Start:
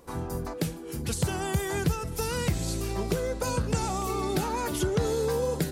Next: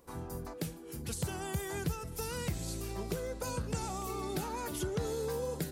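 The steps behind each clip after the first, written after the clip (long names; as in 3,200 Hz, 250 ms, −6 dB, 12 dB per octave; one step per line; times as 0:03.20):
high-shelf EQ 11,000 Hz +6.5 dB
level −8.5 dB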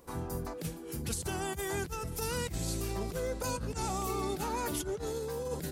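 compressor whose output falls as the input rises −37 dBFS, ratio −0.5
level +3 dB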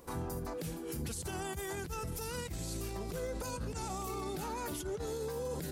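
brickwall limiter −33 dBFS, peak gain reduction 11.5 dB
level +2.5 dB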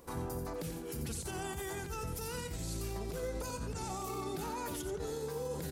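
single-tap delay 89 ms −8 dB
level −1 dB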